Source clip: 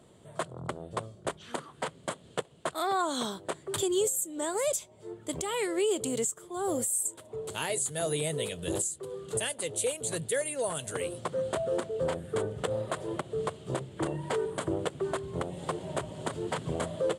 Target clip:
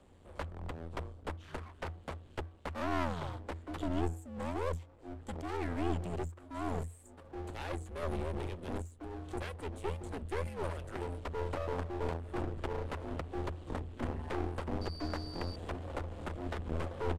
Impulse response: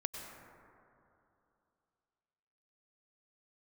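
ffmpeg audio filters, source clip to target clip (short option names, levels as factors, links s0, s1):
-filter_complex "[0:a]highshelf=f=4200:g=-11.5,bandreject=f=407.8:t=h:w=4,bandreject=f=815.6:t=h:w=4,bandreject=f=1223.4:t=h:w=4,acrossover=split=540|2500[s0][s1][s2];[s2]acompressor=threshold=0.00126:ratio=5[s3];[s0][s1][s3]amix=inputs=3:normalize=0,aeval=exprs='max(val(0),0)':c=same,asettb=1/sr,asplit=3[s4][s5][s6];[s4]atrim=end=14.814[s7];[s5]atrim=start=14.81:end=15.56,asetpts=PTS-STARTPTS,afade=t=in:d=0.004:c=qsin,afade=t=out:st=0.746:d=0.004:c=qsin,aeval=exprs='val(0)+0.00398*sin(2*PI*4700*n/s)':c=same[s8];[s6]atrim=start=15.556[s9];[s7][s8]acrossfade=d=0.004:c1=hsin:c2=qsin[s10];[s10][s9]acrossfade=d=0.004:c1=qsin:c2=hsin,afreqshift=-85,aeval=exprs='clip(val(0),-1,0.0075)':c=same,aresample=32000,aresample=44100,volume=1.12"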